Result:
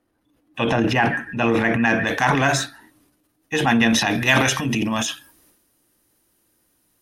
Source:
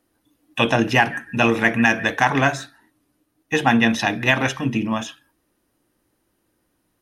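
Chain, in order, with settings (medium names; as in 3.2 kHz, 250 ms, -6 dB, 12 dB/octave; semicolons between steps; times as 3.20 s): treble shelf 3.7 kHz -10 dB, from 2.07 s +3 dB, from 4.11 s +11.5 dB; transient shaper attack -3 dB, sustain +9 dB; trim -1 dB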